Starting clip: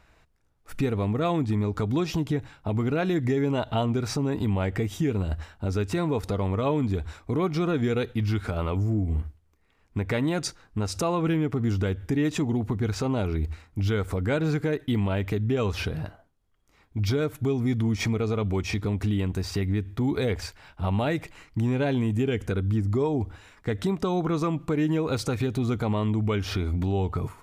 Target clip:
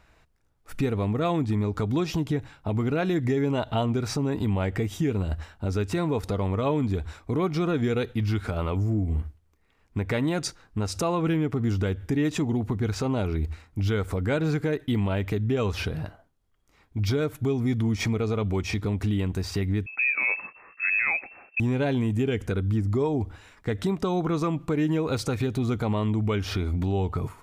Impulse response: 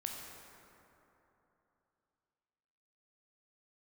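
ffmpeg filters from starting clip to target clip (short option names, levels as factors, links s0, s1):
-filter_complex "[0:a]asettb=1/sr,asplit=3[s0][s1][s2];[s0]atrim=end=19.864[s3];[s1]atrim=start=19.86:end=21.6,asetpts=PTS-STARTPTS,afade=t=in:d=0.004:c=qsin,afade=t=out:st=1.736:d=0.004:c=qsin,lowpass=f=2300:t=q:w=0.5098,lowpass=f=2300:t=q:w=0.6013,lowpass=f=2300:t=q:w=0.9,lowpass=f=2300:t=q:w=2.563,afreqshift=-2700[s4];[s2]atrim=start=21.596[s5];[s3][s4]acrossfade=d=0.004:c1=hsin:c2=qsin[s6];[s6][s5]acrossfade=d=0.004:c1=qsin:c2=hsin"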